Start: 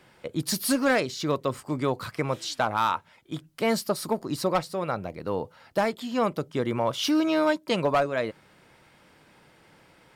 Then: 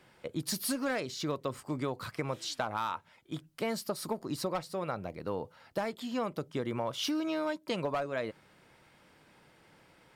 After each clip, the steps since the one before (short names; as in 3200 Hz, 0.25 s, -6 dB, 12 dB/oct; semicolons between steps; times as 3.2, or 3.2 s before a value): compressor 5:1, threshold -25 dBFS, peak gain reduction 6.5 dB; gain -4.5 dB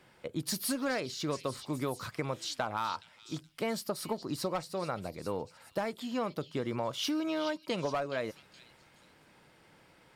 delay with a stepping band-pass 0.421 s, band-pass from 3800 Hz, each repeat 0.7 oct, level -8 dB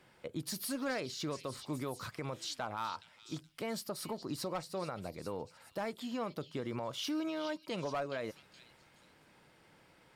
limiter -26.5 dBFS, peak gain reduction 6 dB; gain -2.5 dB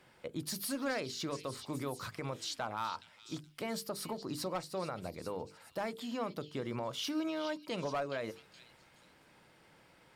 notches 50/100/150/200/250/300/350/400/450 Hz; gain +1 dB